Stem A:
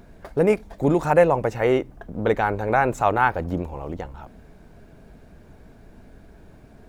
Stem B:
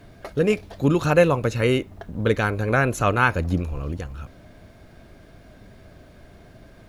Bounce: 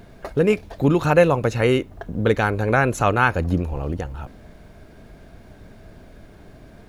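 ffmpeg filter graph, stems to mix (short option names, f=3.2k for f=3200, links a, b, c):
-filter_complex "[0:a]acompressor=threshold=-30dB:ratio=2,volume=0.5dB[a];[1:a]volume=-1dB[b];[a][b]amix=inputs=2:normalize=0"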